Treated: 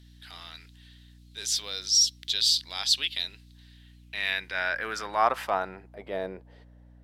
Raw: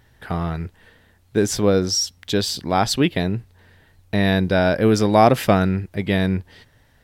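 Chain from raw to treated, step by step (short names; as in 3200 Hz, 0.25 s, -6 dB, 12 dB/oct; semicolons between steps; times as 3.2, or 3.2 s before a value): band-pass sweep 3800 Hz -> 570 Hz, 3.68–6.17; transient shaper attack -5 dB, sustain +1 dB; RIAA curve recording; hum 60 Hz, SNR 22 dB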